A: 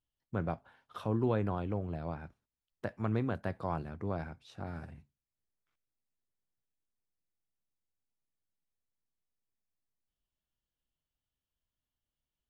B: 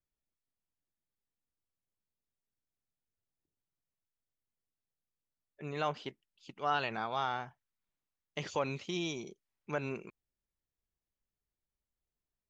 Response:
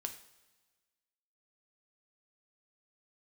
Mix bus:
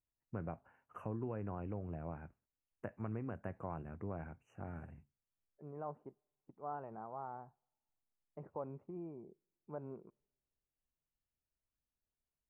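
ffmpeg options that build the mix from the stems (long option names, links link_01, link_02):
-filter_complex "[0:a]acompressor=threshold=-33dB:ratio=4,highshelf=frequency=3000:gain=-10,volume=-4.5dB[link_01];[1:a]lowpass=frequency=1000:width=0.5412,lowpass=frequency=1000:width=1.3066,volume=-9.5dB,asplit=2[link_02][link_03];[link_03]volume=-19dB[link_04];[2:a]atrim=start_sample=2205[link_05];[link_04][link_05]afir=irnorm=-1:irlink=0[link_06];[link_01][link_02][link_06]amix=inputs=3:normalize=0,asuperstop=centerf=4200:order=20:qfactor=1.4"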